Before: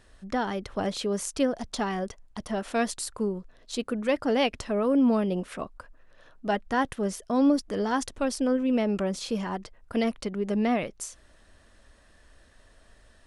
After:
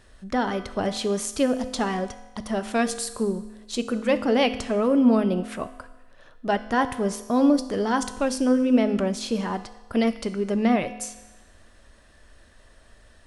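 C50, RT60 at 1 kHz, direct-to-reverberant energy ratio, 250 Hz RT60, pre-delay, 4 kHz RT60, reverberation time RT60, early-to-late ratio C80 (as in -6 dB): 12.5 dB, 1.1 s, 10.0 dB, 1.1 s, 4 ms, 1.1 s, 1.1 s, 14.5 dB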